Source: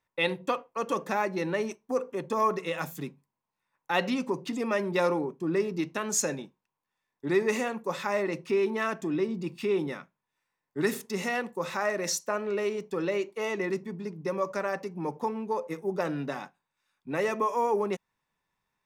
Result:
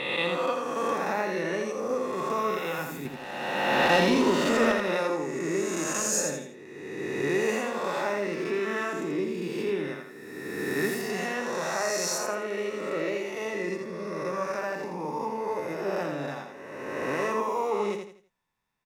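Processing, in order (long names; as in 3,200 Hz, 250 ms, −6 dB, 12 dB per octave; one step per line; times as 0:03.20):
peak hold with a rise ahead of every peak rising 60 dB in 1.94 s
0:03.05–0:04.72: leveller curve on the samples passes 2
repeating echo 83 ms, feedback 33%, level −5 dB
level −5 dB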